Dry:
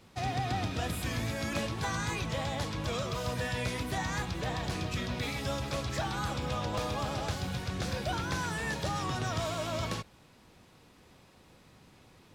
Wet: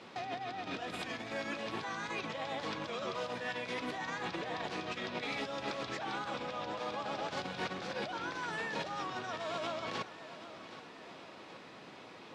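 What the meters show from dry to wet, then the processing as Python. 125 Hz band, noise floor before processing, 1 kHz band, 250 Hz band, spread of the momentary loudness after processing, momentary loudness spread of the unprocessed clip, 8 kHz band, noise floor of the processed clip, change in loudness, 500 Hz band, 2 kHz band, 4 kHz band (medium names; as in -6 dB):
-17.0 dB, -60 dBFS, -3.0 dB, -6.5 dB, 12 LU, 2 LU, -11.5 dB, -52 dBFS, -5.0 dB, -3.0 dB, -2.5 dB, -4.0 dB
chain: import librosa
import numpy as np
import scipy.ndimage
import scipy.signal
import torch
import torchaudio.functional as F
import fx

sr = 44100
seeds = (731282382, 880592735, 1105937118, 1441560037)

y = fx.over_compress(x, sr, threshold_db=-40.0, ratio=-1.0)
y = fx.bandpass_edges(y, sr, low_hz=290.0, high_hz=4100.0)
y = fx.echo_feedback(y, sr, ms=775, feedback_pct=52, wet_db=-14)
y = y * 10.0 ** (3.5 / 20.0)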